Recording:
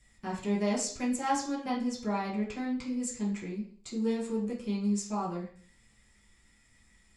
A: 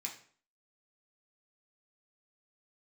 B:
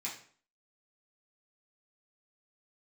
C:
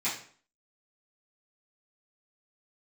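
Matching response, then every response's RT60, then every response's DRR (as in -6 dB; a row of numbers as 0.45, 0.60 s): B; 0.50, 0.50, 0.50 s; -1.0, -6.5, -13.0 dB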